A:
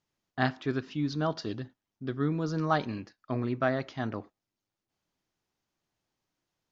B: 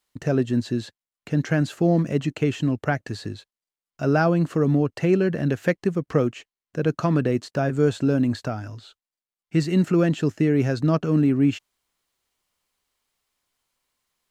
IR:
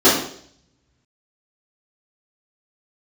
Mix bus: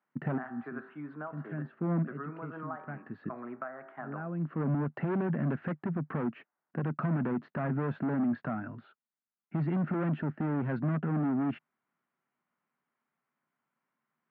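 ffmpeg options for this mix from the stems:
-filter_complex "[0:a]acrossover=split=460 2200:gain=0.0891 1 0.0891[a][b][c];[a][b][c]amix=inputs=3:normalize=0,bandreject=f=55.4:t=h:w=4,bandreject=f=110.8:t=h:w=4,bandreject=f=166.2:t=h:w=4,bandreject=f=221.6:t=h:w=4,bandreject=f=277:t=h:w=4,bandreject=f=332.4:t=h:w=4,bandreject=f=387.8:t=h:w=4,bandreject=f=443.2:t=h:w=4,bandreject=f=498.6:t=h:w=4,bandreject=f=554:t=h:w=4,bandreject=f=609.4:t=h:w=4,bandreject=f=664.8:t=h:w=4,bandreject=f=720.2:t=h:w=4,bandreject=f=775.6:t=h:w=4,bandreject=f=831:t=h:w=4,bandreject=f=886.4:t=h:w=4,bandreject=f=941.8:t=h:w=4,bandreject=f=997.2:t=h:w=4,bandreject=f=1.0526k:t=h:w=4,bandreject=f=1.108k:t=h:w=4,bandreject=f=1.1634k:t=h:w=4,bandreject=f=1.2188k:t=h:w=4,bandreject=f=1.2742k:t=h:w=4,bandreject=f=1.3296k:t=h:w=4,bandreject=f=1.385k:t=h:w=4,bandreject=f=1.4404k:t=h:w=4,bandreject=f=1.4958k:t=h:w=4,bandreject=f=1.5512k:t=h:w=4,bandreject=f=1.6066k:t=h:w=4,bandreject=f=1.662k:t=h:w=4,bandreject=f=1.7174k:t=h:w=4,bandreject=f=1.7728k:t=h:w=4,bandreject=f=1.8282k:t=h:w=4,bandreject=f=1.8836k:t=h:w=4,acompressor=threshold=-40dB:ratio=8,volume=2dB,asplit=2[d][e];[1:a]volume=-3dB[f];[e]apad=whole_len=631049[g];[f][g]sidechaincompress=threshold=-58dB:ratio=10:attack=7.3:release=401[h];[d][h]amix=inputs=2:normalize=0,asoftclip=type=hard:threshold=-27dB,highpass=f=140:w=0.5412,highpass=f=140:w=1.3066,equalizer=f=150:t=q:w=4:g=7,equalizer=f=230:t=q:w=4:g=8,equalizer=f=480:t=q:w=4:g=-5,equalizer=f=1.4k:t=q:w=4:g=4,lowpass=f=2k:w=0.5412,lowpass=f=2k:w=1.3066,alimiter=limit=-22.5dB:level=0:latency=1:release=133"

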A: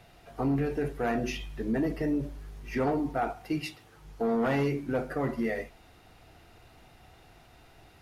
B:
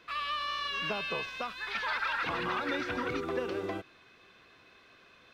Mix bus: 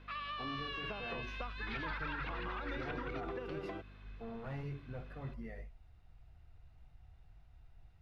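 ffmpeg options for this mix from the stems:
-filter_complex "[0:a]aemphasis=mode=reproduction:type=50kf,flanger=delay=2.2:depth=4.5:regen=-76:speed=1.7:shape=triangular,asubboost=boost=11.5:cutoff=94,volume=-12.5dB[a];[1:a]lowpass=3.6k,acompressor=threshold=-35dB:ratio=6,aeval=exprs='val(0)+0.00282*(sin(2*PI*50*n/s)+sin(2*PI*2*50*n/s)/2+sin(2*PI*3*50*n/s)/3+sin(2*PI*4*50*n/s)/4+sin(2*PI*5*50*n/s)/5)':c=same,volume=-4dB[b];[a][b]amix=inputs=2:normalize=0"

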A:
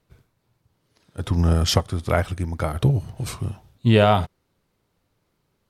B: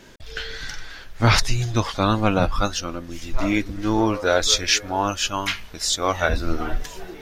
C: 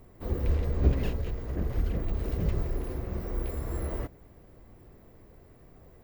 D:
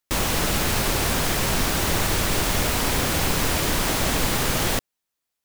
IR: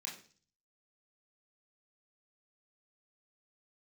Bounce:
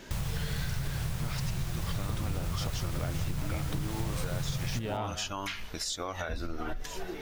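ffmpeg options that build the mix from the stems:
-filter_complex "[0:a]acompressor=threshold=-26dB:ratio=6,adelay=900,volume=-1.5dB,asplit=2[a][b];[b]volume=-13.5dB[c];[1:a]acompressor=threshold=-25dB:ratio=3,alimiter=limit=-22dB:level=0:latency=1:release=113,volume=-1dB[d];[2:a]volume=-13dB[e];[3:a]lowshelf=f=200:t=q:w=3:g=11,volume=-12.5dB,asplit=2[f][g];[g]volume=-13.5dB[h];[c][h]amix=inputs=2:normalize=0,aecho=0:1:181:1[i];[a][d][e][f][i]amix=inputs=5:normalize=0,acompressor=threshold=-30dB:ratio=4"

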